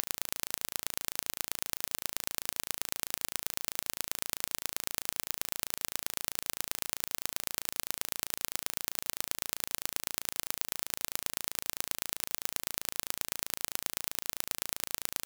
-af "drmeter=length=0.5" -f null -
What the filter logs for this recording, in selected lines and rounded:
Channel 1: DR: 27.0
Overall DR: 27.0